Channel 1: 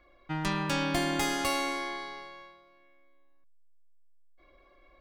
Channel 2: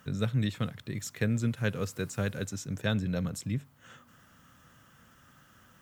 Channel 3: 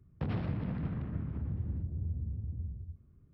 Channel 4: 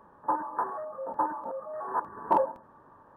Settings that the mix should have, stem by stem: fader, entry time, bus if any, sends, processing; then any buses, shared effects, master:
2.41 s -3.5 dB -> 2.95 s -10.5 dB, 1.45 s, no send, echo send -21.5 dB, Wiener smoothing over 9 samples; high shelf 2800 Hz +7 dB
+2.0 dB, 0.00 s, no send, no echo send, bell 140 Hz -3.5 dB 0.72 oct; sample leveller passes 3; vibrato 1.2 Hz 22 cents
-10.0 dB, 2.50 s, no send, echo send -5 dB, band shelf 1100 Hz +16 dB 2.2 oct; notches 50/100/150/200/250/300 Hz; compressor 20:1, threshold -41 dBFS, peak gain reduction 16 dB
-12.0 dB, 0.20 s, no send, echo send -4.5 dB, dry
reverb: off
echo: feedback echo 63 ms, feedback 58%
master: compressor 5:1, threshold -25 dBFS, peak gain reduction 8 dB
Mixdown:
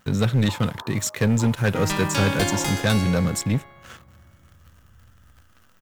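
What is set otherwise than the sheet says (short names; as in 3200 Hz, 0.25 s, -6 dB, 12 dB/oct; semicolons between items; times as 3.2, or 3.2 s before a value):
stem 1 -3.5 dB -> +3.5 dB; master: missing compressor 5:1, threshold -25 dBFS, peak gain reduction 8 dB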